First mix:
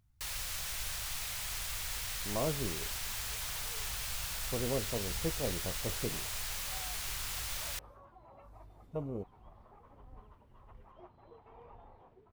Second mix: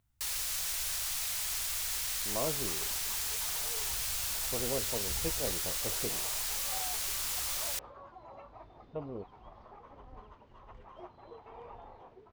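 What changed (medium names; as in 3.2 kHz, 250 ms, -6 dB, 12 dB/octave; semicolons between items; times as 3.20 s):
speech: add steep low-pass 3.7 kHz; second sound +7.0 dB; master: add tone controls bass -6 dB, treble +6 dB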